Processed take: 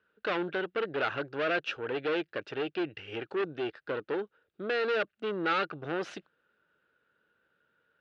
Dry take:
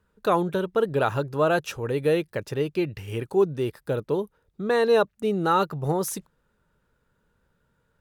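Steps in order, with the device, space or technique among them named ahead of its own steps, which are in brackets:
guitar amplifier (tube saturation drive 26 dB, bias 0.6; bass and treble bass −14 dB, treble +1 dB; loudspeaker in its box 86–4,100 Hz, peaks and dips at 320 Hz +5 dB, 960 Hz −8 dB, 1,500 Hz +8 dB, 2,800 Hz +6 dB)

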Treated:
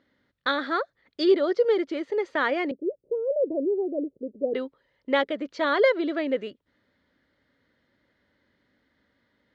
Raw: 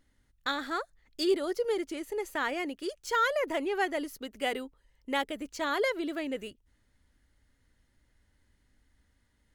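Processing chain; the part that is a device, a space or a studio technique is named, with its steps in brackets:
kitchen radio (loudspeaker in its box 190–4,100 Hz, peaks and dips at 550 Hz +5 dB, 830 Hz −4 dB, 2,700 Hz −7 dB)
0:02.71–0:04.54: Butterworth low-pass 540 Hz 36 dB per octave
level +7 dB

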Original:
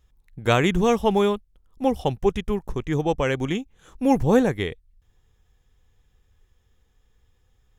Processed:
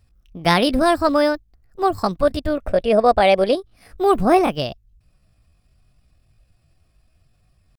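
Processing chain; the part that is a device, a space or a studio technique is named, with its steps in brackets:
0:02.58–0:03.57: graphic EQ with 15 bands 100 Hz −4 dB, 400 Hz +11 dB, 1,600 Hz +5 dB, 10,000 Hz −7 dB
chipmunk voice (pitch shifter +6.5 semitones)
level +3 dB

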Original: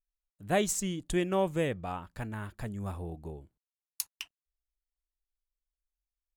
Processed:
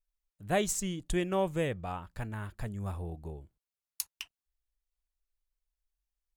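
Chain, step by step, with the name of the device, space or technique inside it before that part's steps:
low shelf boost with a cut just above (low-shelf EQ 73 Hz +7 dB; parametric band 260 Hz −3 dB 0.83 octaves)
level −1 dB

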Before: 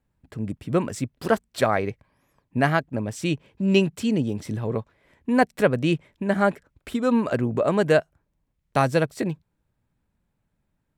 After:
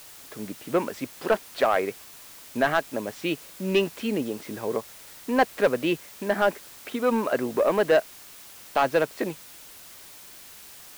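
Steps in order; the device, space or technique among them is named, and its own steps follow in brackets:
tape answering machine (band-pass filter 350–3,300 Hz; soft clipping −14.5 dBFS, distortion −14 dB; tape wow and flutter; white noise bed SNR 19 dB)
level +2.5 dB

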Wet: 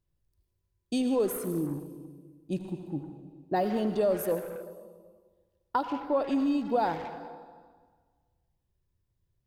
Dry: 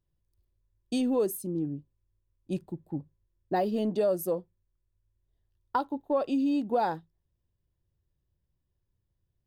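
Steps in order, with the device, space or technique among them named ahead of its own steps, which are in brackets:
saturated reverb return (on a send at −4 dB: convolution reverb RT60 1.5 s, pre-delay 73 ms + soft clipping −31 dBFS, distortion −8 dB)

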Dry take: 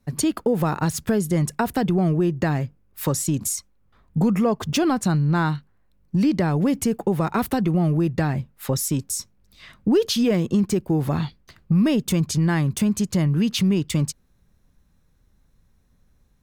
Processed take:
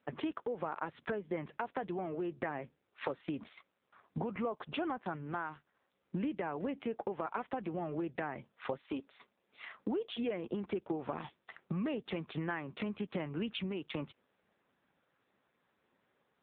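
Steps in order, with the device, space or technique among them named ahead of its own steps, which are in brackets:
0:08.81–0:10.11: elliptic band-pass filter 200–3,600 Hz, stop band 50 dB
voicemail (band-pass filter 440–2,900 Hz; downward compressor 8 to 1, threshold −37 dBFS, peak gain reduction 17.5 dB; level +4 dB; AMR narrowband 5.9 kbit/s 8,000 Hz)

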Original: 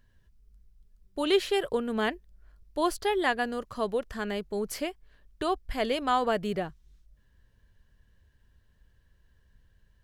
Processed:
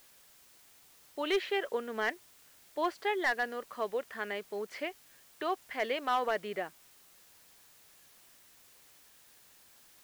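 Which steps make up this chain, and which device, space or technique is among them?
drive-through speaker (band-pass filter 380–3,300 Hz; parametric band 2,000 Hz +7 dB 0.51 octaves; hard clipping −18.5 dBFS, distortion −17 dB; white noise bed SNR 23 dB)
level −3.5 dB

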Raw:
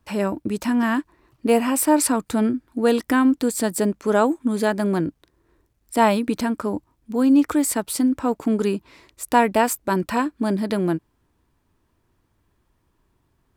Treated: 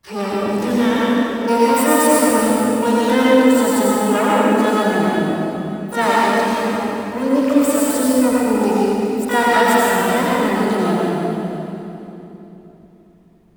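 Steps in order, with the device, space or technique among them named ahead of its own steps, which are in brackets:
0:06.03–0:07.83: low-shelf EQ 370 Hz −4.5 dB
shimmer-style reverb (pitch-shifted copies added +12 semitones −4 dB; convolution reverb RT60 3.3 s, pre-delay 78 ms, DRR −6.5 dB)
level −3.5 dB

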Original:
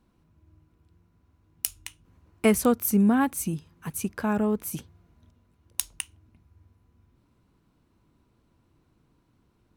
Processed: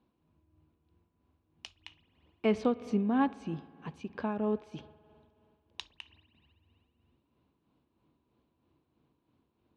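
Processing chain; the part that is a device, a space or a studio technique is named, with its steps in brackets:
combo amplifier with spring reverb and tremolo (spring reverb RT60 2.6 s, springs 53 ms, chirp 20 ms, DRR 16.5 dB; amplitude tremolo 3.1 Hz, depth 48%; loudspeaker in its box 90–3,900 Hz, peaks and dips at 110 Hz −9 dB, 180 Hz −6 dB, 1,400 Hz −7 dB, 2,000 Hz −6 dB)
level −2.5 dB

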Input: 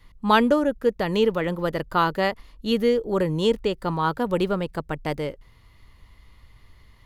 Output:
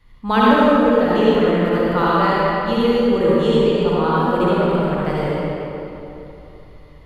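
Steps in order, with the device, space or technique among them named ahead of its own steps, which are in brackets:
swimming-pool hall (convolution reverb RT60 3.2 s, pre-delay 51 ms, DRR −8.5 dB; high-shelf EQ 4,700 Hz −7 dB)
level −2 dB

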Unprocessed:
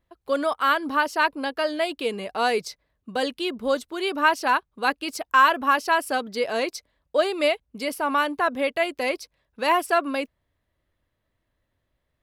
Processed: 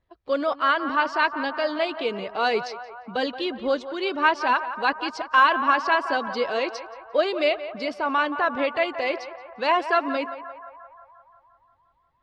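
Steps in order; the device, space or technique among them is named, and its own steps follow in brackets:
clip after many re-uploads (low-pass filter 5,300 Hz 24 dB per octave; spectral magnitudes quantised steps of 15 dB)
feedback echo with a band-pass in the loop 175 ms, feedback 71%, band-pass 1,000 Hz, level −10.5 dB

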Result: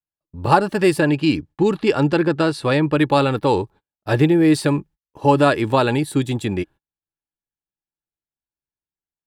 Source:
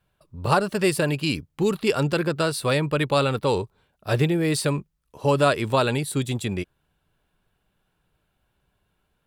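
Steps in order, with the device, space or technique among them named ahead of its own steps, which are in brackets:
noise gate −45 dBFS, range −34 dB
inside a helmet (high-shelf EQ 5,300 Hz −7 dB; hollow resonant body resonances 310/840/1,700 Hz, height 9 dB)
0:01.00–0:02.94: Bessel low-pass filter 7,300 Hz, order 2
level +3 dB

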